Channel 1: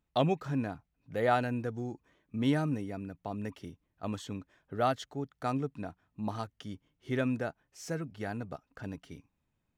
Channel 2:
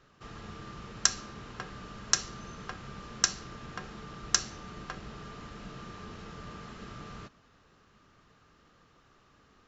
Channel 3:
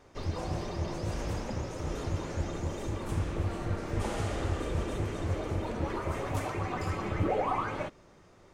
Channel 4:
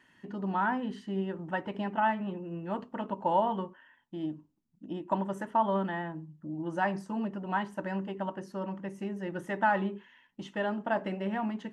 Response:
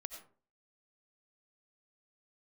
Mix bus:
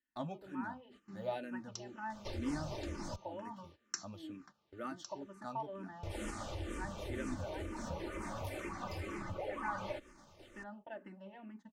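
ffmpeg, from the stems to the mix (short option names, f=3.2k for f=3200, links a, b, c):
-filter_complex "[0:a]flanger=delay=9.6:depth=3.4:regen=-55:speed=0.97:shape=triangular,volume=-6.5dB,asplit=2[a][b];[1:a]highpass=140,adelay=700,volume=-13.5dB[c];[2:a]highshelf=f=2.2k:g=5.5,acompressor=threshold=-40dB:ratio=5,adelay=2100,volume=2dB,asplit=3[d][e][f];[d]atrim=end=3.16,asetpts=PTS-STARTPTS,afade=t=out:st=3.156:d=0.004:c=hsin[g];[e]atrim=start=3.16:end=6.03,asetpts=PTS-STARTPTS,volume=0[h];[f]atrim=start=6.03,asetpts=PTS-STARTPTS,afade=t=in:d=0.004:c=hsin[i];[g][h][i]concat=n=3:v=0:a=1[j];[3:a]volume=-15dB[k];[b]apad=whole_len=457497[l];[c][l]sidechaincompress=threshold=-49dB:ratio=12:attack=8.5:release=409[m];[a][m][j][k]amix=inputs=4:normalize=0,agate=range=-15dB:threshold=-54dB:ratio=16:detection=peak,aecho=1:1:3.4:0.4,asplit=2[n][o];[o]afreqshift=-2.1[p];[n][p]amix=inputs=2:normalize=1"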